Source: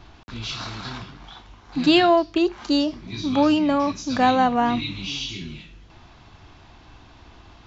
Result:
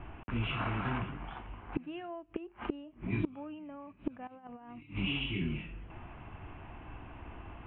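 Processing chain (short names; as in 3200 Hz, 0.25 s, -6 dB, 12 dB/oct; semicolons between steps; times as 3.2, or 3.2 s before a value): steep low-pass 2900 Hz 72 dB/oct; bell 1800 Hz -2.5 dB 1.3 oct; 4.27–4.83 negative-ratio compressor -23 dBFS, ratio -0.5; flipped gate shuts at -21 dBFS, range -27 dB; gain +1 dB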